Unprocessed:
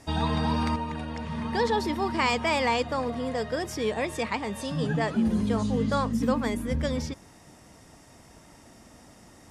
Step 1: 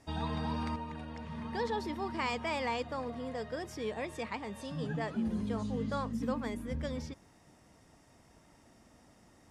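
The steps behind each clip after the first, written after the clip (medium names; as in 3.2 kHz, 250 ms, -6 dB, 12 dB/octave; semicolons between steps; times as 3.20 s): treble shelf 5.1 kHz -4.5 dB; trim -9 dB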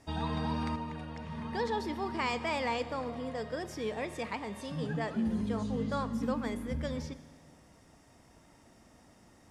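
Schroeder reverb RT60 1.7 s, combs from 32 ms, DRR 13.5 dB; trim +1.5 dB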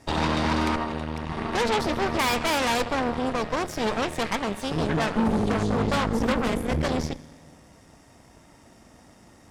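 Chebyshev shaper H 8 -11 dB, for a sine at -20.5 dBFS; trim +7 dB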